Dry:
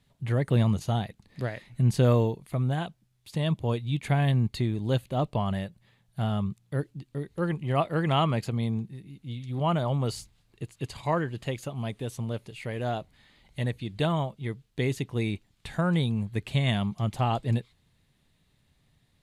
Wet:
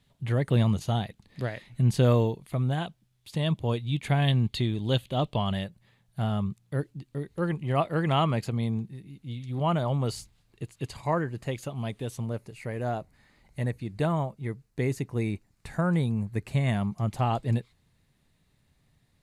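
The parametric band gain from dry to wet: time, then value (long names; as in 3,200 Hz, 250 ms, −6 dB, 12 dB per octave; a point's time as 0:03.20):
parametric band 3,300 Hz 0.57 octaves
+2.5 dB
from 0:04.22 +9.5 dB
from 0:05.64 −1.5 dB
from 0:10.96 −11.5 dB
from 0:11.49 −0.5 dB
from 0:12.26 −12.5 dB
from 0:17.08 −4.5 dB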